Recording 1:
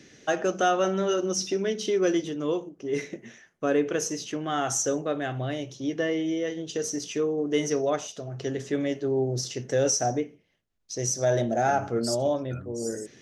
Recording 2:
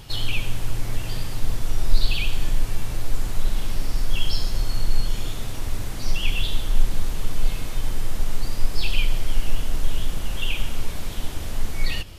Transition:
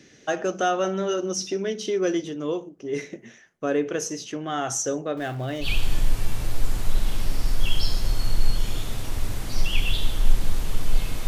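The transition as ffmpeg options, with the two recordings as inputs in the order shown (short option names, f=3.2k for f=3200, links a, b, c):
-filter_complex "[0:a]asettb=1/sr,asplit=3[a][b][c];[a]atrim=end=5.174[d];[b]atrim=start=5.17:end=5.68,asetpts=PTS-STARTPTS,afade=t=in:d=0.004:c=qsin,afade=t=out:st=0.506:d=0.004:c=qsin,aeval=exprs='val(0)+0.5*0.01*sgn(val(0))':c=same[e];[c]atrim=start=5.676[f];[d][e]acrossfade=d=0.004:c1=hsin:c2=qsin[g];[g][f]acrossfade=d=0.004:c1=qsin:c2=hsin,apad=whole_dur=11.27,atrim=end=11.27,atrim=end=5.68,asetpts=PTS-STARTPTS[h];[1:a]atrim=start=2.1:end=7.77,asetpts=PTS-STARTPTS[i];[h][i]acrossfade=d=0.08:c1=tri:c2=tri"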